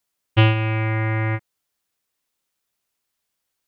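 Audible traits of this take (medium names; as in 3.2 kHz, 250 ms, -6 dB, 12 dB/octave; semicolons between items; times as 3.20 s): noise floor -79 dBFS; spectral tilt -5.5 dB/octave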